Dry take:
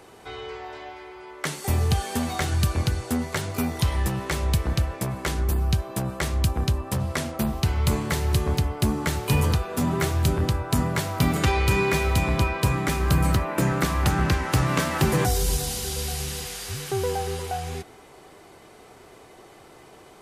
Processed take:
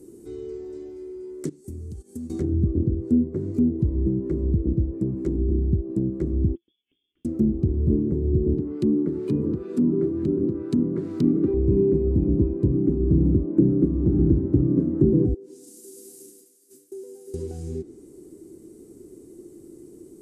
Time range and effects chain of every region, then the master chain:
0:01.49–0:02.30: noise gate −28 dBFS, range −16 dB + parametric band 66 Hz +4.5 dB 1.4 octaves + downward compressor 4 to 1, threshold −37 dBFS
0:06.55–0:07.25: gate with flip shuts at −23 dBFS, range −31 dB + high-frequency loss of the air 220 metres + voice inversion scrambler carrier 3,400 Hz
0:08.58–0:11.54: high-pass filter 190 Hz + flat-topped bell 2,200 Hz +8.5 dB 2.4 octaves
0:13.90–0:14.61: low-pass filter 8,400 Hz + flutter between parallel walls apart 11.6 metres, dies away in 0.67 s
0:15.34–0:17.34: downward expander −22 dBFS + Chebyshev high-pass filter 290 Hz, order 3 + downward compressor, threshold −39 dBFS
whole clip: drawn EQ curve 140 Hz 0 dB, 340 Hz +12 dB, 700 Hz −25 dB, 3,200 Hz −24 dB, 8,100 Hz +2 dB; treble cut that deepens with the level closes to 760 Hz, closed at −20 dBFS; parametric band 570 Hz +2 dB

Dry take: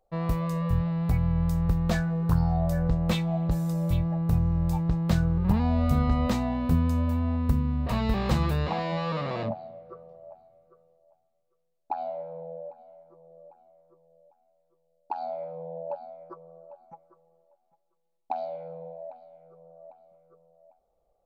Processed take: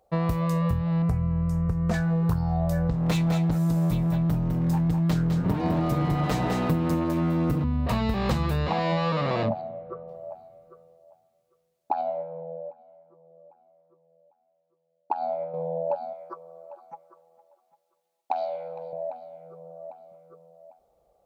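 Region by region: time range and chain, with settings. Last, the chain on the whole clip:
0:01.02–0:01.94: low-pass filter 9,400 Hz + parametric band 3,700 Hz −12.5 dB 0.78 octaves + notch comb filter 280 Hz
0:02.93–0:07.64: lower of the sound and its delayed copy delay 6.5 ms + single-tap delay 205 ms −6.5 dB
0:09.61–0:10.08: high-frequency loss of the air 290 metres + notch filter 4,500 Hz, Q 26
0:12.01–0:15.54: high-frequency loss of the air 160 metres + expander for the loud parts, over −48 dBFS
0:16.13–0:18.93: high-pass filter 730 Hz 6 dB per octave + single-tap delay 459 ms −20 dB
whole clip: downward compressor, threshold −29 dBFS; high-pass filter 57 Hz; level +8 dB

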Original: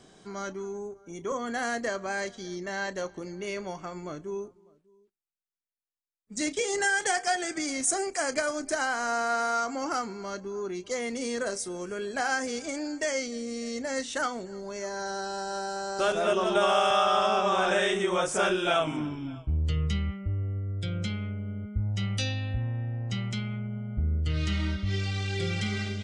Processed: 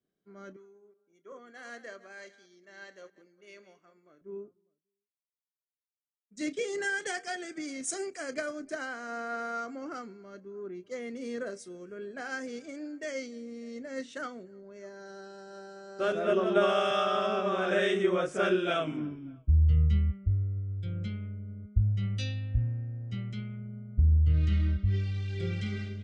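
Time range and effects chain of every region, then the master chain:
0:00.56–0:04.21: delay that plays each chunk backwards 190 ms, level −12 dB + high-pass filter 730 Hz 6 dB per octave
whole clip: low-pass filter 1,600 Hz 6 dB per octave; parametric band 880 Hz −14 dB 0.62 octaves; multiband upward and downward expander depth 100%; level −2.5 dB

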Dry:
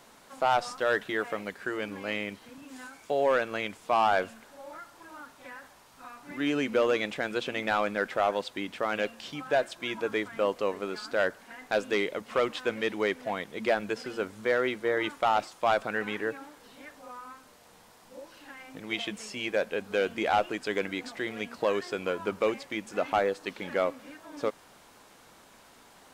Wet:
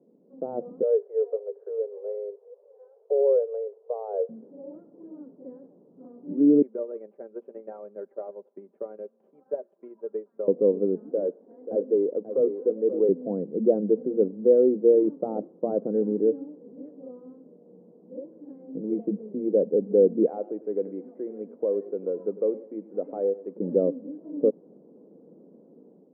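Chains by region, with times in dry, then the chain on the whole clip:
0:00.82–0:04.29: Chebyshev high-pass filter 400 Hz, order 10 + high-frequency loss of the air 460 metres
0:06.62–0:10.48: high-pass filter 1,200 Hz + comb filter 5.1 ms, depth 74% + transient designer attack +7 dB, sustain −5 dB
0:11.09–0:13.09: high-pass filter 400 Hz + hard clipping −24 dBFS + single-tap delay 535 ms −10 dB
0:20.26–0:23.56: meter weighting curve ITU-R 468 + repeating echo 99 ms, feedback 33%, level −17 dB
whole clip: elliptic band-pass filter 170–490 Hz, stop band 80 dB; automatic gain control gain up to 9.5 dB; level +2 dB

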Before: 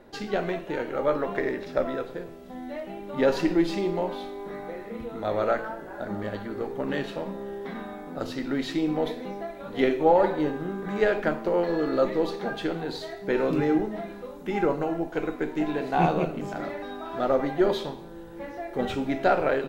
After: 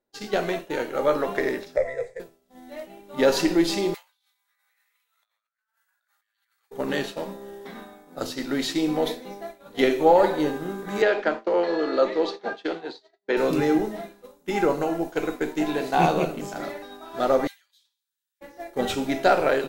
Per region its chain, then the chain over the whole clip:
0:01.76–0:02.20: drawn EQ curve 130 Hz 0 dB, 200 Hz −16 dB, 320 Hz −26 dB, 470 Hz +4 dB, 1,400 Hz −19 dB, 2,000 Hz +9 dB, 2,900 Hz −21 dB, 4,100 Hz −15 dB, 8,000 Hz −3 dB, 15,000 Hz −29 dB + one half of a high-frequency compander encoder only
0:03.94–0:06.71: high-pass filter 1,400 Hz 24 dB per octave + compressor whose output falls as the input rises −51 dBFS + high-shelf EQ 11,000 Hz +5 dB
0:11.02–0:13.37: downward expander −31 dBFS + low-pass filter 9,300 Hz 24 dB per octave + three-way crossover with the lows and the highs turned down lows −18 dB, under 240 Hz, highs −24 dB, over 5,200 Hz
0:17.47–0:18.41: Bessel high-pass filter 2,800 Hz, order 4 + downward compressor, threshold −41 dBFS
whole clip: downward expander −29 dBFS; bass and treble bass −4 dB, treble +12 dB; level +3 dB

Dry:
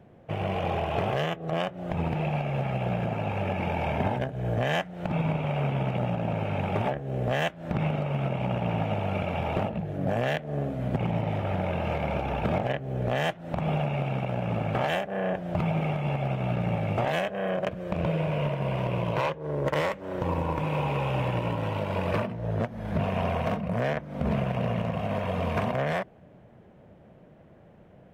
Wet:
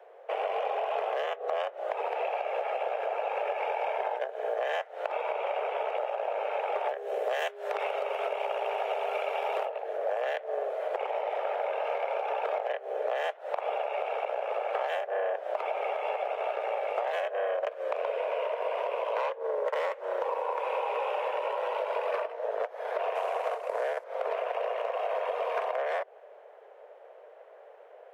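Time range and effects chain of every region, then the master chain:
0:06.88–0:09.65: high-shelf EQ 4,000 Hz +11.5 dB + steady tone 410 Hz −39 dBFS
0:23.15–0:24.04: variable-slope delta modulation 64 kbit/s + highs frequency-modulated by the lows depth 0.18 ms
whole clip: Butterworth high-pass 430 Hz 72 dB per octave; high-shelf EQ 2,500 Hz −10.5 dB; downward compressor, threshold −35 dBFS; level +7.5 dB

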